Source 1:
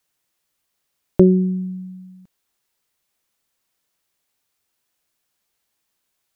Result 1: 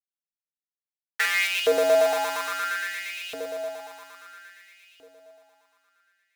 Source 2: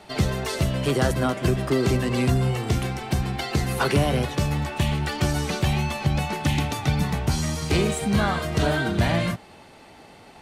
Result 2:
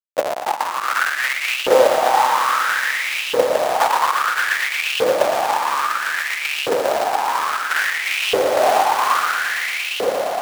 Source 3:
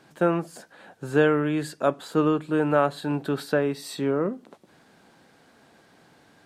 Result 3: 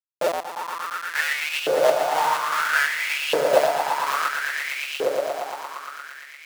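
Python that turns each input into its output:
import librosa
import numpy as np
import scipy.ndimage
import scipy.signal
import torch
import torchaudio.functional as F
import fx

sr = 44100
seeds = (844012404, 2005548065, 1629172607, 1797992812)

y = fx.cycle_switch(x, sr, every=2, mode='inverted')
y = fx.dynamic_eq(y, sr, hz=330.0, q=3.8, threshold_db=-41.0, ratio=4.0, max_db=-8)
y = fx.schmitt(y, sr, flips_db=-21.0)
y = fx.echo_swell(y, sr, ms=116, loudest=5, wet_db=-7.0)
y = fx.filter_lfo_highpass(y, sr, shape='saw_up', hz=0.6, low_hz=460.0, high_hz=2900.0, q=6.3)
y = F.gain(torch.from_numpy(y), 5.5).numpy()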